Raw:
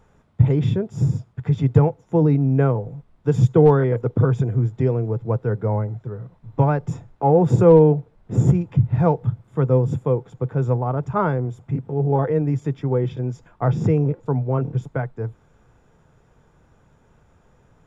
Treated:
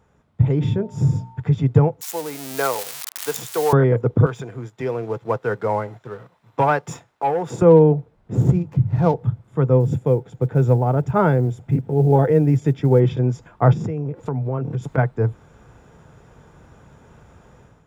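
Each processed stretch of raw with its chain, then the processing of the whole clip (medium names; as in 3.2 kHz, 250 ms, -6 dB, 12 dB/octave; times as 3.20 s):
0.60–1.40 s: hum notches 60/120/180/240/300/360/420/480/540/600 Hz + whistle 900 Hz -48 dBFS
2.01–3.73 s: zero-crossing glitches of -20.5 dBFS + high-pass 800 Hz
4.26–7.62 s: high-pass 1.4 kHz 6 dB/octave + waveshaping leveller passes 1
8.35–9.14 s: median filter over 15 samples + hum notches 50/100/150/200 Hz
9.80–13.00 s: peaking EQ 1.1 kHz -8.5 dB 0.33 oct + short-mantissa float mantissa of 6-bit
13.72–14.98 s: compression 4:1, threshold -30 dBFS + tape noise reduction on one side only encoder only
whole clip: level rider; high-pass 43 Hz; trim -2.5 dB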